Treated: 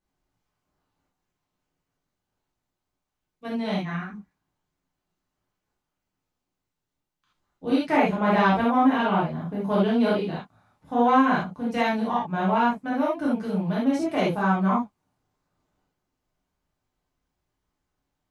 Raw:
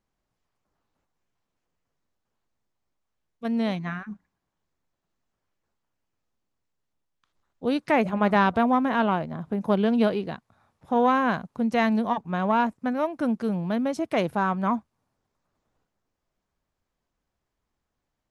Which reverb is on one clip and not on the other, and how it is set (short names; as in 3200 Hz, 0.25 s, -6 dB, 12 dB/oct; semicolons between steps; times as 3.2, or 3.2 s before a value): non-linear reverb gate 0.1 s flat, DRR -7.5 dB; gain -7 dB